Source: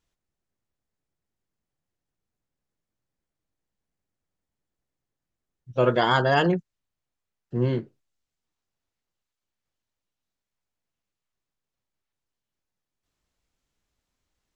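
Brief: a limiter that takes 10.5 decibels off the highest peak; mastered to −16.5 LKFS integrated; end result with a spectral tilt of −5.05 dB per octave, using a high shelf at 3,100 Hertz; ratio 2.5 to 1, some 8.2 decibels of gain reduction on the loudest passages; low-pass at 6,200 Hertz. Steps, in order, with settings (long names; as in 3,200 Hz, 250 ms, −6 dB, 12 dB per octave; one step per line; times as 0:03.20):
low-pass filter 6,200 Hz
high-shelf EQ 3,100 Hz +6 dB
downward compressor 2.5 to 1, threshold −28 dBFS
level +21.5 dB
brickwall limiter −5 dBFS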